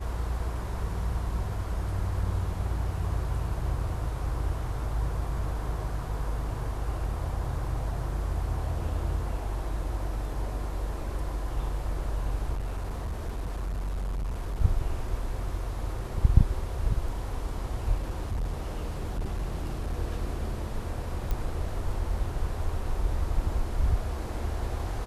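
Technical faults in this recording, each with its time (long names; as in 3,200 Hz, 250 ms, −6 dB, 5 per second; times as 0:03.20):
0:12.54–0:14.62: clipping −28 dBFS
0:17.94–0:19.99: clipping −26 dBFS
0:21.31: click −17 dBFS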